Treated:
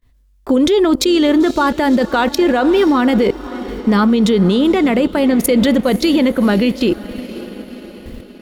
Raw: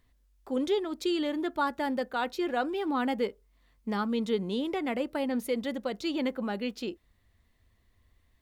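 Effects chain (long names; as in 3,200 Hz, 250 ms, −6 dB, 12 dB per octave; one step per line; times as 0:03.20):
notch filter 800 Hz, Q 12
noise gate with hold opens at −55 dBFS
low-shelf EQ 210 Hz +6.5 dB
output level in coarse steps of 21 dB
feedback delay with all-pass diffusion 528 ms, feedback 55%, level −15.5 dB
transient designer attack +1 dB, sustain −4 dB
boost into a limiter +35 dB
level −4 dB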